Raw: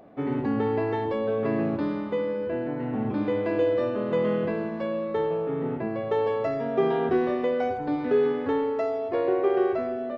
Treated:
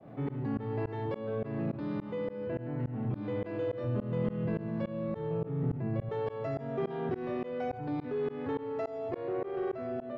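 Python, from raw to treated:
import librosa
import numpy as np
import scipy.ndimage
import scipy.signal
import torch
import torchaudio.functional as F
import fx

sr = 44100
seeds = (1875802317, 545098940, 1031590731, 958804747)

y = fx.peak_eq(x, sr, hz=130.0, db=12.5, octaves=0.84)
y = fx.comb_fb(y, sr, f0_hz=120.0, decay_s=1.3, harmonics='odd', damping=0.0, mix_pct=70)
y = 10.0 ** (-24.5 / 20.0) * np.tanh(y / 10.0 ** (-24.5 / 20.0))
y = fx.low_shelf(y, sr, hz=190.0, db=11.5, at=(3.84, 6.09))
y = fx.tremolo_shape(y, sr, shape='saw_up', hz=3.5, depth_pct=100)
y = fx.env_flatten(y, sr, amount_pct=50)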